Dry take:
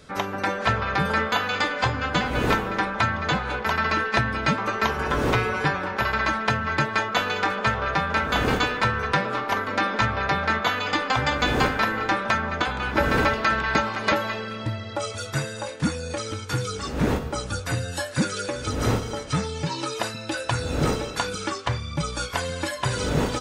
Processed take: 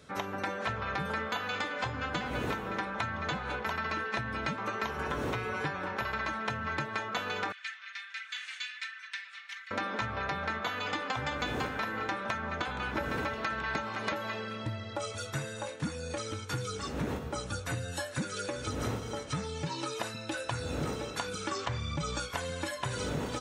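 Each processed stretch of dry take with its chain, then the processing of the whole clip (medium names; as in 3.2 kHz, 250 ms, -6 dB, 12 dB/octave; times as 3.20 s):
7.52–9.71 s: Chebyshev band-pass 1.9–9 kHz, order 3 + flange 1.4 Hz, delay 0.3 ms, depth 5.3 ms, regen +46%
21.51–22.20 s: steep low-pass 8.5 kHz 72 dB/octave + level flattener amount 50%
whole clip: high-pass 60 Hz; band-stop 4.8 kHz, Q 15; compression, threshold -24 dBFS; trim -6 dB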